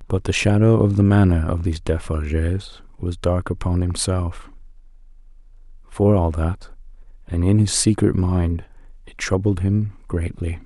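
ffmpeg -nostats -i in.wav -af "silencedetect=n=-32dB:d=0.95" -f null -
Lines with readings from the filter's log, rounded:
silence_start: 4.48
silence_end: 5.92 | silence_duration: 1.45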